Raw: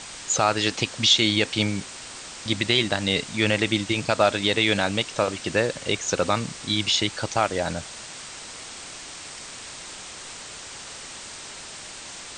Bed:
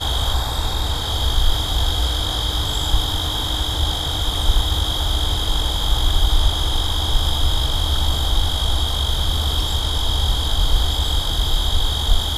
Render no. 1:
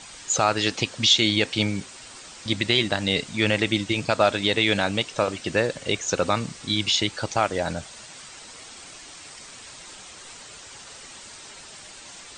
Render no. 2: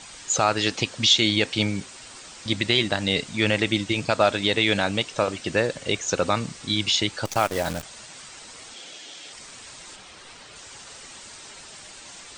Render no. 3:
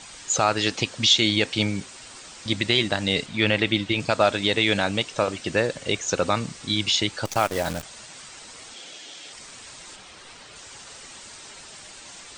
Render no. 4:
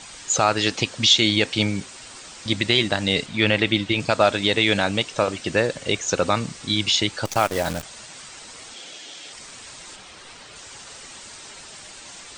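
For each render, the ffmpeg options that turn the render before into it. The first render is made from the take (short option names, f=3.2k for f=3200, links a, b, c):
-af "afftdn=nr=7:nf=-40"
-filter_complex "[0:a]asettb=1/sr,asplit=3[a][b][c];[a]atrim=end=7.254[d];[b]atrim=start=7.25:end=7.83,asetpts=PTS-STARTPTS,afade=t=in:d=0.004:c=qsin,afade=t=out:st=0.576:d=0.004:c=qsin,acrusher=bits=6:dc=4:mix=0:aa=0.000001[e];[c]atrim=start=7.826[f];[d][e]acrossfade=d=0.004:c1=hsin:c2=qsin[g];[g][f]acrossfade=d=0.004:c1=qsin:c2=hsin,asettb=1/sr,asplit=3[h][i][j];[h]atrim=end=8.744[k];[i]atrim=start=8.74:end=9.33,asetpts=PTS-STARTPTS,afade=t=in:d=0.004:c=qsin,afade=t=out:st=0.586:d=0.004:c=qsin,highpass=200,equalizer=f=510:t=q:w=4:g=5,equalizer=f=1.1k:t=q:w=4:g=-7,equalizer=f=3.3k:t=q:w=4:g=9,lowpass=f=8k:w=0.5412,lowpass=f=8k:w=1.3066[l];[j]atrim=start=9.326[m];[k][l]acrossfade=d=0.004:c1=hsin:c2=qsin[n];[n][m]acrossfade=d=0.004:c1=qsin:c2=hsin,asettb=1/sr,asplit=3[o][p][q];[o]atrim=end=9.964[r];[p]atrim=start=9.96:end=10.56,asetpts=PTS-STARTPTS,afade=t=in:d=0.004:c=qsin,afade=t=out:st=0.596:d=0.004:c=qsin,equalizer=f=7.4k:t=o:w=0.77:g=-8[s];[q]atrim=start=10.556[t];[r][s]acrossfade=d=0.004:c1=hsin:c2=qsin[u];[u][t]acrossfade=d=0.004:c1=qsin:c2=hsin"
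-filter_complex "[0:a]asettb=1/sr,asplit=3[a][b][c];[a]atrim=end=3.264[d];[b]atrim=start=3.26:end=4,asetpts=PTS-STARTPTS,afade=t=in:d=0.004:c=qsin,afade=t=out:st=0.736:d=0.004:c=qsin,highshelf=f=4.8k:t=q:w=1.5:g=-6.5[e];[c]atrim=start=3.996[f];[d][e]acrossfade=d=0.004:c1=hsin:c2=qsin[g];[g][f]acrossfade=d=0.004:c1=qsin:c2=hsin"
-af "volume=2dB"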